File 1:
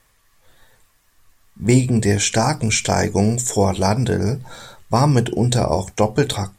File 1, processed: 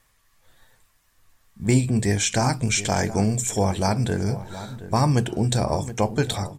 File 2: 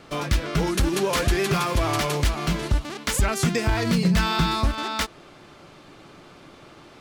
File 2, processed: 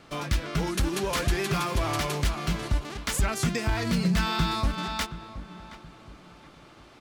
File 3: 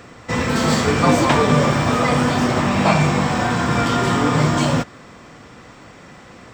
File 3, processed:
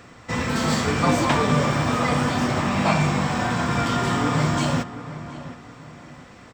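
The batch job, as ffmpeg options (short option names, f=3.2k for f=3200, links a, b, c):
-filter_complex "[0:a]equalizer=f=440:t=o:w=0.92:g=-3,asplit=2[a][b];[b]adelay=722,lowpass=f=1.9k:p=1,volume=-13.5dB,asplit=2[c][d];[d]adelay=722,lowpass=f=1.9k:p=1,volume=0.35,asplit=2[e][f];[f]adelay=722,lowpass=f=1.9k:p=1,volume=0.35[g];[a][c][e][g]amix=inputs=4:normalize=0,volume=-4dB"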